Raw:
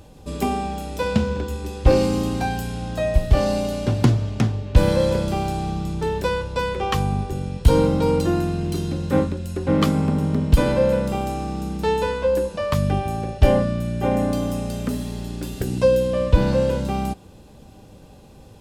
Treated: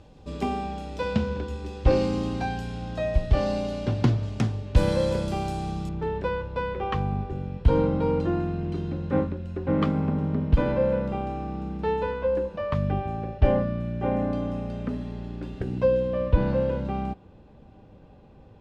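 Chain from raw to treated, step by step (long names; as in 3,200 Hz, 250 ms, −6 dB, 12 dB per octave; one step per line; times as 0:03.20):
low-pass filter 4,900 Hz 12 dB per octave, from 0:04.23 9,800 Hz, from 0:05.89 2,300 Hz
level −5 dB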